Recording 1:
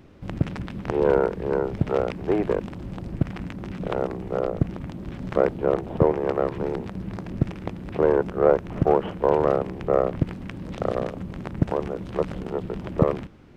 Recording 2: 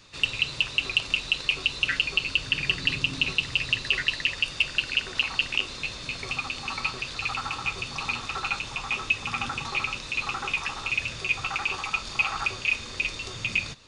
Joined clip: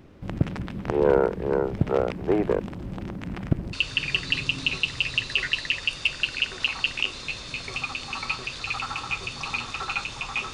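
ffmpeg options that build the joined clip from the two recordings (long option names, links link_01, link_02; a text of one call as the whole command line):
ffmpeg -i cue0.wav -i cue1.wav -filter_complex "[0:a]apad=whole_dur=10.53,atrim=end=10.53,asplit=2[link_01][link_02];[link_01]atrim=end=3.012[link_03];[link_02]atrim=start=3.008:end=3.732,asetpts=PTS-STARTPTS,areverse[link_04];[1:a]atrim=start=2.278:end=9.08[link_05];[link_03][link_04]acrossfade=duration=0.004:curve1=hsin:curve2=hsin[link_06];[link_06][link_05]acrossfade=duration=0.004:curve1=hsin:curve2=hsin" out.wav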